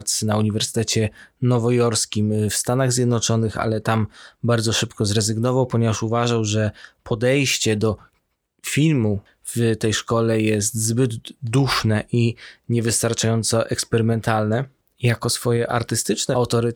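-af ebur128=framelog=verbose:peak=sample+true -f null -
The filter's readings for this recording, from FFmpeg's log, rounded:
Integrated loudness:
  I:         -20.5 LUFS
  Threshold: -30.7 LUFS
Loudness range:
  LRA:         1.2 LU
  Threshold: -40.8 LUFS
  LRA low:   -21.3 LUFS
  LRA high:  -20.1 LUFS
Sample peak:
  Peak:       -3.4 dBFS
True peak:
  Peak:       -3.4 dBFS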